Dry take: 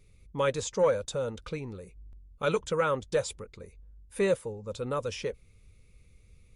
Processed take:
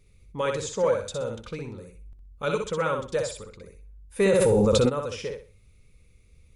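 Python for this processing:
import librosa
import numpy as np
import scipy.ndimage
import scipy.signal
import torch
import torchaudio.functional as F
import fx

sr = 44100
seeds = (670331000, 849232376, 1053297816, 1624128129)

y = fx.echo_feedback(x, sr, ms=62, feedback_pct=28, wet_db=-4.5)
y = fx.env_flatten(y, sr, amount_pct=100, at=(4.19, 4.88), fade=0.02)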